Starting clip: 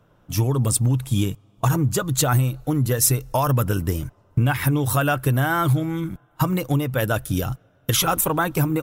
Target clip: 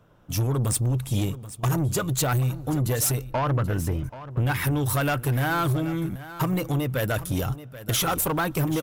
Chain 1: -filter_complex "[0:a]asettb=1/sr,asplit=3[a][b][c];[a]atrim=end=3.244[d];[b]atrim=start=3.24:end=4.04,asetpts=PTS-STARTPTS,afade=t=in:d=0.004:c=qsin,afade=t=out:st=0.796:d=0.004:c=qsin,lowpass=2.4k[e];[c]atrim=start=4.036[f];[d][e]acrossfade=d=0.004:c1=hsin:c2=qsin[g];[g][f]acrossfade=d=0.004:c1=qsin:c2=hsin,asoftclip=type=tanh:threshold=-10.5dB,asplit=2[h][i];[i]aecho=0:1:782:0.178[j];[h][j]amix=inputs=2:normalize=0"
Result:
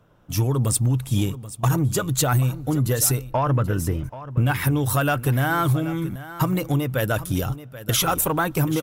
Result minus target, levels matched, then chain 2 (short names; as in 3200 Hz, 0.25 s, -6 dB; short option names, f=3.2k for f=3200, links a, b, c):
soft clip: distortion -12 dB
-filter_complex "[0:a]asettb=1/sr,asplit=3[a][b][c];[a]atrim=end=3.244[d];[b]atrim=start=3.24:end=4.04,asetpts=PTS-STARTPTS,afade=t=in:d=0.004:c=qsin,afade=t=out:st=0.796:d=0.004:c=qsin,lowpass=2.4k[e];[c]atrim=start=4.036[f];[d][e]acrossfade=d=0.004:c1=hsin:c2=qsin[g];[g][f]acrossfade=d=0.004:c1=qsin:c2=hsin,asoftclip=type=tanh:threshold=-19.5dB,asplit=2[h][i];[i]aecho=0:1:782:0.178[j];[h][j]amix=inputs=2:normalize=0"